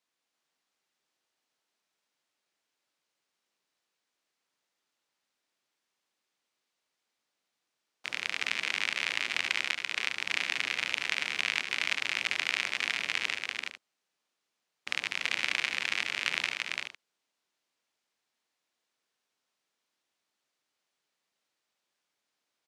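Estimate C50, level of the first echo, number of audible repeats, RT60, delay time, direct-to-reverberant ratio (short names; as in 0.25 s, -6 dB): none, -12.0 dB, 4, none, 74 ms, none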